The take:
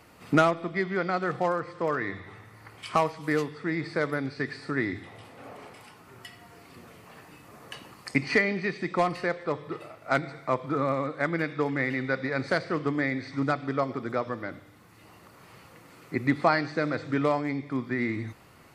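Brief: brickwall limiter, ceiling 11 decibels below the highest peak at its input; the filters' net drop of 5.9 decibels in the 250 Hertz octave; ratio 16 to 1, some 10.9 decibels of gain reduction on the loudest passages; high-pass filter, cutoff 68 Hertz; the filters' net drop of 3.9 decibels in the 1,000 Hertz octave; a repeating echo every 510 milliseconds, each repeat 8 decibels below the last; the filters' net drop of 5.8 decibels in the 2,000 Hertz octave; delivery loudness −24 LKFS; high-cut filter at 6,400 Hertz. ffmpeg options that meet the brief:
ffmpeg -i in.wav -af "highpass=68,lowpass=6400,equalizer=frequency=250:width_type=o:gain=-7.5,equalizer=frequency=1000:width_type=o:gain=-3,equalizer=frequency=2000:width_type=o:gain=-6,acompressor=threshold=-30dB:ratio=16,alimiter=level_in=4.5dB:limit=-24dB:level=0:latency=1,volume=-4.5dB,aecho=1:1:510|1020|1530|2040|2550:0.398|0.159|0.0637|0.0255|0.0102,volume=16dB" out.wav

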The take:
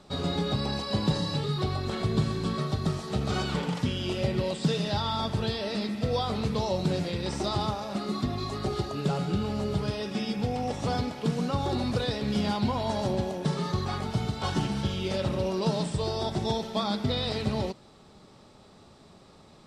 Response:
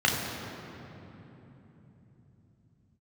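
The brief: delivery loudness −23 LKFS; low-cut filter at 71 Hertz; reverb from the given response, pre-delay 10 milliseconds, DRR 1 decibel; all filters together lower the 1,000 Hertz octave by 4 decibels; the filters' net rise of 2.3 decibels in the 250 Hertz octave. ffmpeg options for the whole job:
-filter_complex "[0:a]highpass=71,equalizer=frequency=250:width_type=o:gain=3.5,equalizer=frequency=1000:width_type=o:gain=-5.5,asplit=2[link_01][link_02];[1:a]atrim=start_sample=2205,adelay=10[link_03];[link_02][link_03]afir=irnorm=-1:irlink=0,volume=-16dB[link_04];[link_01][link_04]amix=inputs=2:normalize=0,volume=1.5dB"

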